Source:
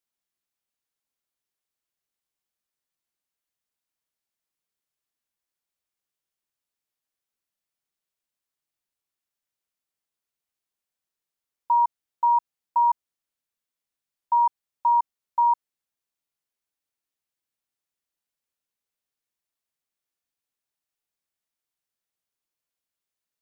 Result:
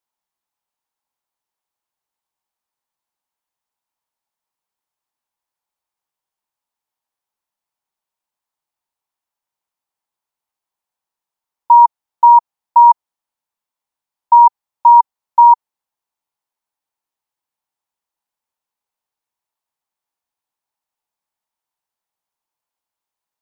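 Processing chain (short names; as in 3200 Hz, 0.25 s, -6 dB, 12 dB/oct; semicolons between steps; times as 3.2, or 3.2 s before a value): bell 900 Hz +14 dB 0.74 oct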